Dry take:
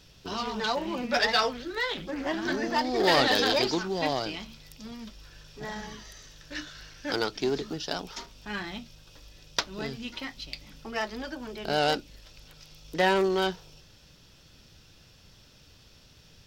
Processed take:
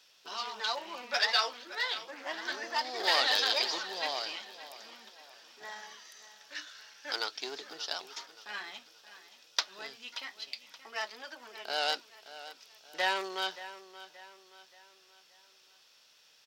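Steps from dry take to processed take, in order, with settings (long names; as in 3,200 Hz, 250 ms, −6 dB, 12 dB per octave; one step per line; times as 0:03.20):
on a send: repeating echo 577 ms, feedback 42%, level −14.5 dB
on the sum: dynamic equaliser 4,300 Hz, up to +4 dB, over −40 dBFS, Q 1.2
high-pass filter 760 Hz 12 dB per octave
level −4 dB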